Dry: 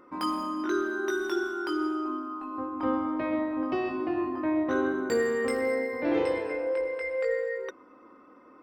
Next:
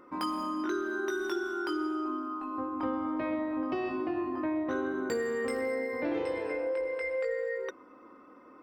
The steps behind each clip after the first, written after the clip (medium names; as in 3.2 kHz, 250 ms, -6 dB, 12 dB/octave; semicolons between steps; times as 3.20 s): compression 4:1, threshold -29 dBFS, peak gain reduction 7 dB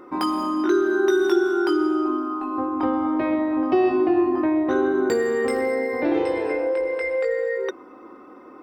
small resonant body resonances 370/760/3700 Hz, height 8 dB, ringing for 35 ms; trim +7.5 dB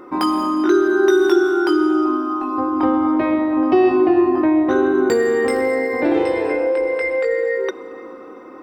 plate-style reverb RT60 4.9 s, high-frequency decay 0.8×, DRR 15.5 dB; trim +4.5 dB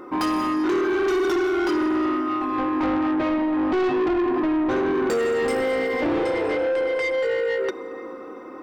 saturation -19 dBFS, distortion -9 dB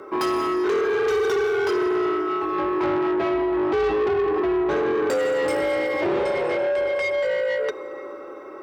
frequency shift +53 Hz